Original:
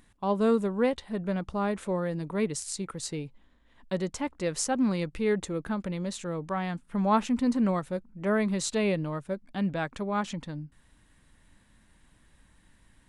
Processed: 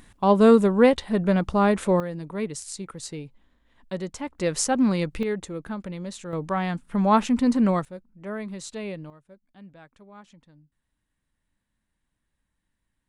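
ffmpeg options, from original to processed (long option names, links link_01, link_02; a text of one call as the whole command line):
ffmpeg -i in.wav -af "asetnsamples=nb_out_samples=441:pad=0,asendcmd='2 volume volume -1dB;4.39 volume volume 5dB;5.23 volume volume -1.5dB;6.33 volume volume 5dB;7.85 volume volume -7dB;9.1 volume volume -18dB',volume=9dB" out.wav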